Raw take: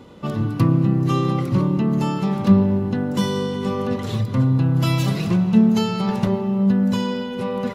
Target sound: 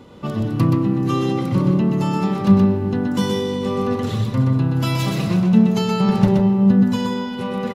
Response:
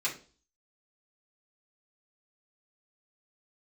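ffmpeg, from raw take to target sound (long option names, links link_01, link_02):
-filter_complex "[0:a]asettb=1/sr,asplit=3[link_01][link_02][link_03];[link_01]atrim=end=6.004[link_04];[link_02]atrim=start=6:end=6.83,asetpts=PTS-STARTPTS,afade=type=in:duration=0.004:curve=qsin,afade=type=out:start_time=0.826:duration=0.004:curve=qsin,lowshelf=frequency=390:gain=6[link_05];[link_03]atrim=start=6.826[link_06];[link_04][link_05]acrossfade=duration=0.004:curve1=hsin:curve2=qsin[link_07];[link_07][link_06]acrossfade=duration=0.004:curve1=qsin:curve2=hsin,aecho=1:1:125:0.631"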